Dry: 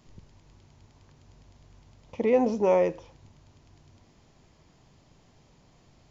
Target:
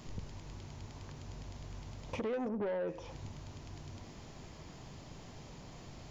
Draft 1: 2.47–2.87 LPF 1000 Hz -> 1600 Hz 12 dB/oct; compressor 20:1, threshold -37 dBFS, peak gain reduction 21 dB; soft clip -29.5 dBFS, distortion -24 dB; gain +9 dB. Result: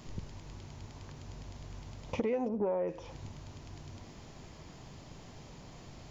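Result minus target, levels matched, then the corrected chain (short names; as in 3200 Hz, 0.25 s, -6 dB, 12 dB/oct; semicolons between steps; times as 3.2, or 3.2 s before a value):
soft clip: distortion -14 dB
2.47–2.87 LPF 1000 Hz -> 1600 Hz 12 dB/oct; compressor 20:1, threshold -37 dBFS, peak gain reduction 21 dB; soft clip -40.5 dBFS, distortion -10 dB; gain +9 dB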